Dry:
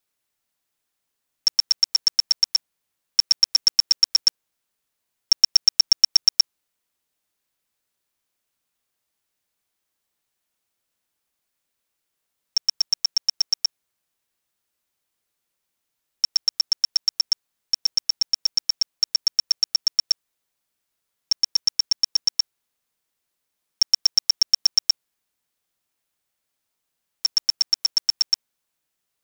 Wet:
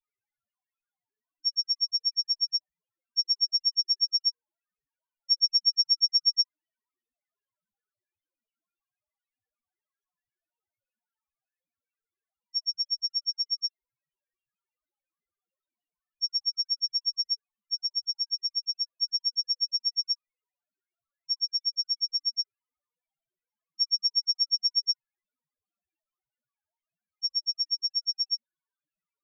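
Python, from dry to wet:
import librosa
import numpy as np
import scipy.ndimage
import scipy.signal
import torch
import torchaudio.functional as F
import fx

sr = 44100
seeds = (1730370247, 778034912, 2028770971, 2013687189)

y = fx.bass_treble(x, sr, bass_db=0, treble_db=-6)
y = fx.spec_topn(y, sr, count=1)
y = y * 10.0 ** (8.0 / 20.0)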